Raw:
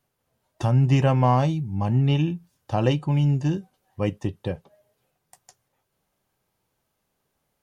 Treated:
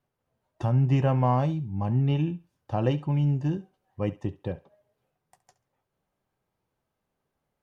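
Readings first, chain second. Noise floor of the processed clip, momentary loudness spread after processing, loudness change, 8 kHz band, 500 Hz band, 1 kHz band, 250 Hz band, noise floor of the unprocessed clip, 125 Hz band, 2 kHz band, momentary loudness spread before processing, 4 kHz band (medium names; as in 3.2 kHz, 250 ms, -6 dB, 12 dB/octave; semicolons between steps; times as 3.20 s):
-82 dBFS, 12 LU, -3.5 dB, no reading, -3.5 dB, -4.5 dB, -3.5 dB, -77 dBFS, -3.5 dB, -7.0 dB, 13 LU, -9.0 dB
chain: treble shelf 3.3 kHz -12 dB; thinning echo 69 ms, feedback 23%, high-pass 420 Hz, level -17 dB; trim -3.5 dB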